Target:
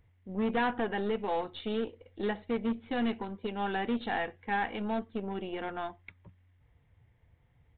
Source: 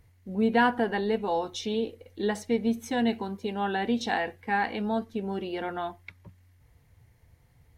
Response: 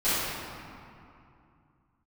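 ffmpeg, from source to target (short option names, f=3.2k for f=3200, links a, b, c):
-af "volume=22.5dB,asoftclip=hard,volume=-22.5dB,aeval=exprs='0.0794*(cos(1*acos(clip(val(0)/0.0794,-1,1)))-cos(1*PI/2))+0.00562*(cos(3*acos(clip(val(0)/0.0794,-1,1)))-cos(3*PI/2))+0.00708*(cos(4*acos(clip(val(0)/0.0794,-1,1)))-cos(4*PI/2))':c=same,aresample=8000,aresample=44100,volume=-3dB"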